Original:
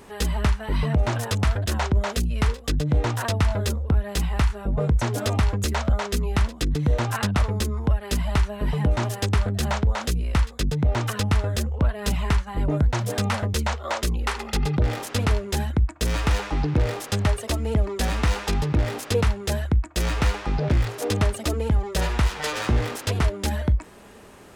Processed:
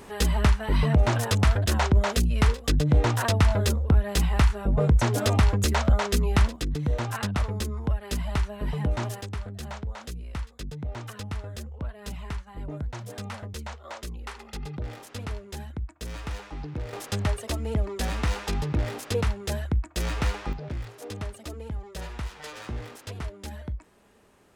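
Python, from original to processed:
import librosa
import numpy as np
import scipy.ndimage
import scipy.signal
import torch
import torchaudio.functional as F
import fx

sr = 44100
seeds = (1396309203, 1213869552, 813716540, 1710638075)

y = fx.gain(x, sr, db=fx.steps((0.0, 1.0), (6.56, -5.0), (9.21, -12.5), (16.93, -4.5), (20.53, -13.0)))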